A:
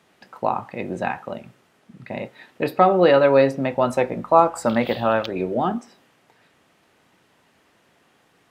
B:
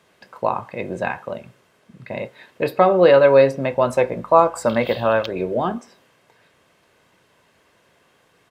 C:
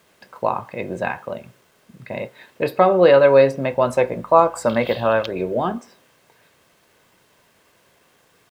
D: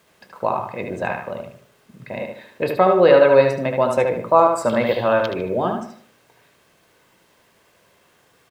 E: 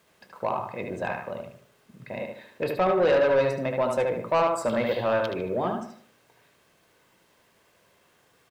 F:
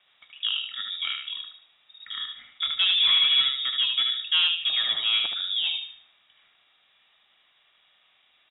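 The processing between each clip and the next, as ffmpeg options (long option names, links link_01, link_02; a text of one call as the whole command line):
ffmpeg -i in.wav -af "aecho=1:1:1.9:0.35,volume=1dB" out.wav
ffmpeg -i in.wav -af "acrusher=bits=9:mix=0:aa=0.000001" out.wav
ffmpeg -i in.wav -filter_complex "[0:a]asplit=2[link_01][link_02];[link_02]adelay=75,lowpass=frequency=4000:poles=1,volume=-4dB,asplit=2[link_03][link_04];[link_04]adelay=75,lowpass=frequency=4000:poles=1,volume=0.37,asplit=2[link_05][link_06];[link_06]adelay=75,lowpass=frequency=4000:poles=1,volume=0.37,asplit=2[link_07][link_08];[link_08]adelay=75,lowpass=frequency=4000:poles=1,volume=0.37,asplit=2[link_09][link_10];[link_10]adelay=75,lowpass=frequency=4000:poles=1,volume=0.37[link_11];[link_01][link_03][link_05][link_07][link_09][link_11]amix=inputs=6:normalize=0,volume=-1dB" out.wav
ffmpeg -i in.wav -af "asoftclip=type=tanh:threshold=-11dB,volume=-5dB" out.wav
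ffmpeg -i in.wav -af "lowpass=frequency=3300:width_type=q:width=0.5098,lowpass=frequency=3300:width_type=q:width=0.6013,lowpass=frequency=3300:width_type=q:width=0.9,lowpass=frequency=3300:width_type=q:width=2.563,afreqshift=-3900" out.wav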